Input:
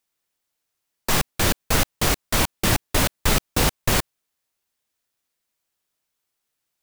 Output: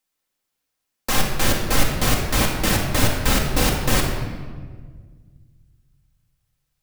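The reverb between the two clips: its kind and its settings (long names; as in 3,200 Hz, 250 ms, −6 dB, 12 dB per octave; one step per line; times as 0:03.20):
rectangular room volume 1,800 cubic metres, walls mixed, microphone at 2.1 metres
level −2 dB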